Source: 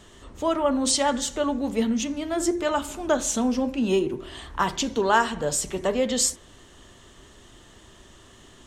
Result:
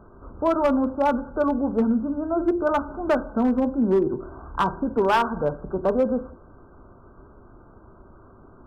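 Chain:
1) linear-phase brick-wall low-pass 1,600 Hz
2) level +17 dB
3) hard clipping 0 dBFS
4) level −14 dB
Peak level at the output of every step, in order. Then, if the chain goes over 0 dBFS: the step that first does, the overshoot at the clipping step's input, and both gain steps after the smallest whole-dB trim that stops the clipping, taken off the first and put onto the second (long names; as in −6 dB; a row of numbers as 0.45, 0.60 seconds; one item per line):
−7.5, +9.5, 0.0, −14.0 dBFS
step 2, 9.5 dB
step 2 +7 dB, step 4 −4 dB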